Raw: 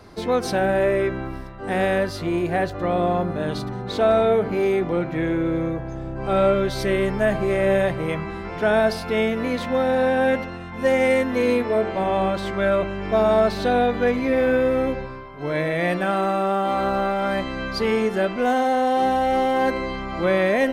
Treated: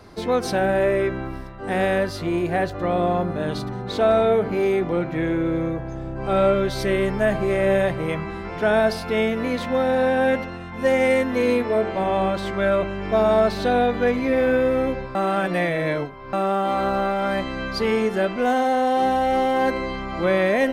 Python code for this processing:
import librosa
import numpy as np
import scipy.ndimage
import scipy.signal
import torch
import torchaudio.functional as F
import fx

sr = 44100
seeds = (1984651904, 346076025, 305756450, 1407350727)

y = fx.edit(x, sr, fx.reverse_span(start_s=15.15, length_s=1.18), tone=tone)